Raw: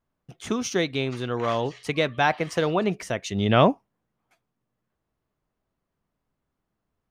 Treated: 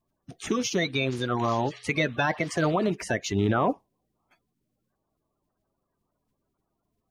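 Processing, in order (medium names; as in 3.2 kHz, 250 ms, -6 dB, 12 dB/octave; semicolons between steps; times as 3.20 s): coarse spectral quantiser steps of 30 dB; band-stop 470 Hz, Q 15; peak limiter -17 dBFS, peak gain reduction 10 dB; trim +2 dB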